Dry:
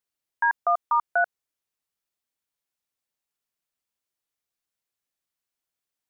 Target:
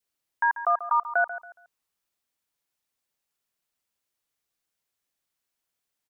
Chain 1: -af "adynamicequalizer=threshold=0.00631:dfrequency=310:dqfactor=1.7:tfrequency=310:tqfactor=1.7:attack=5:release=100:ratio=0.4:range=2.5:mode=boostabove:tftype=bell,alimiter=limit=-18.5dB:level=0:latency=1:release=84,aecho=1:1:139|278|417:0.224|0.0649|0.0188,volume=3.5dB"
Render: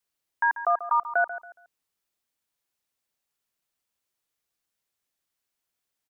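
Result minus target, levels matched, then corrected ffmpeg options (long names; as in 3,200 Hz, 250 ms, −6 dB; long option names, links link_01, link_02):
250 Hz band +4.5 dB
-af "adynamicequalizer=threshold=0.00631:dfrequency=1100:dqfactor=1.7:tfrequency=1100:tqfactor=1.7:attack=5:release=100:ratio=0.4:range=2.5:mode=boostabove:tftype=bell,alimiter=limit=-18.5dB:level=0:latency=1:release=84,aecho=1:1:139|278|417:0.224|0.0649|0.0188,volume=3.5dB"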